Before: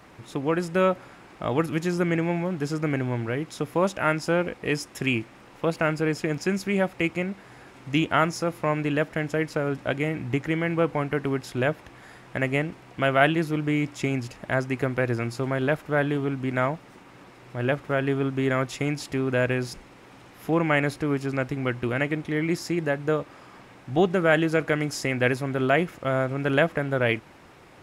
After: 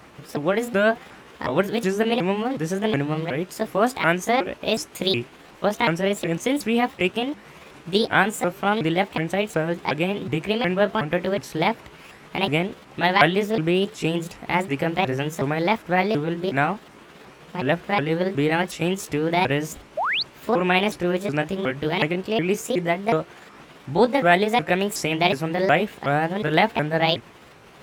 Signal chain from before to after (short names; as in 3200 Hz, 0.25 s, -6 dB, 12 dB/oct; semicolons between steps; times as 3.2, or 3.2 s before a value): repeated pitch sweeps +7.5 st, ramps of 0.367 s; painted sound rise, 19.97–20.23, 550–4900 Hz -27 dBFS; gain +4 dB